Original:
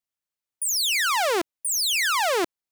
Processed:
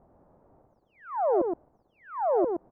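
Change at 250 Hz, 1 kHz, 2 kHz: +2.0, -4.5, -27.0 dB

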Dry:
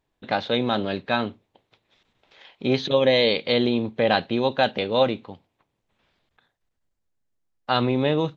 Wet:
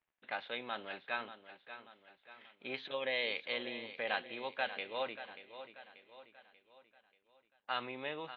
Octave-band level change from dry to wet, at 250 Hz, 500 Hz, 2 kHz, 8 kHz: -26.0 dB, -20.0 dB, -9.5 dB, n/a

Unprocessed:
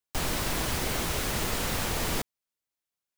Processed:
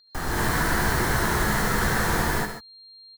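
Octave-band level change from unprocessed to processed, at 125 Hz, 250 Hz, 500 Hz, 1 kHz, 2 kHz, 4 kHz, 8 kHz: +7.5, +7.5, +6.0, +9.5, +10.0, +0.5, +1.5 dB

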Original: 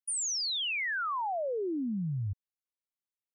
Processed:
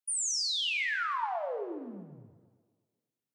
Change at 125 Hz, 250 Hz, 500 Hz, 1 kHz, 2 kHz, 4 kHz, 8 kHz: -19.0, -9.5, -2.5, 0.0, +1.0, +1.0, +1.0 dB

